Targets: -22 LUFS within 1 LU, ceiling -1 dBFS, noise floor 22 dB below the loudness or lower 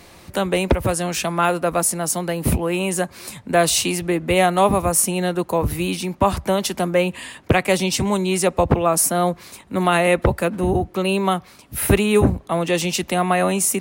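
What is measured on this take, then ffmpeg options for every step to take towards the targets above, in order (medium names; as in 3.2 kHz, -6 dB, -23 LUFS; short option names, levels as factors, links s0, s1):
loudness -20.0 LUFS; peak level -3.5 dBFS; loudness target -22.0 LUFS
-> -af "volume=0.794"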